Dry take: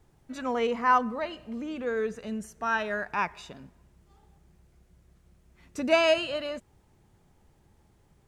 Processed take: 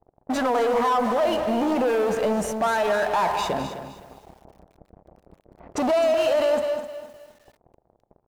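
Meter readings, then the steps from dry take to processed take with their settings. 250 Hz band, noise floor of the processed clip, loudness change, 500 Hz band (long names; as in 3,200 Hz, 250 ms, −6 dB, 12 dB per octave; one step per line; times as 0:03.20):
+7.0 dB, −71 dBFS, +5.5 dB, +8.0 dB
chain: hum removal 79.59 Hz, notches 13
in parallel at −5.5 dB: bit reduction 7 bits
on the sum: downward compressor 10 to 1, threshold −27 dBFS, peak gain reduction 14 dB
leveller curve on the samples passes 5
low-pass that shuts in the quiet parts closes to 590 Hz, open at −25 dBFS
parametric band 700 Hz +14 dB 1.6 octaves
on a send: single-tap delay 207 ms −12.5 dB
on the sum: brickwall limiter −10 dBFS, peak gain reduction 7.5 dB
feedback echo at a low word length 257 ms, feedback 35%, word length 7 bits, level −11 dB
level −5.5 dB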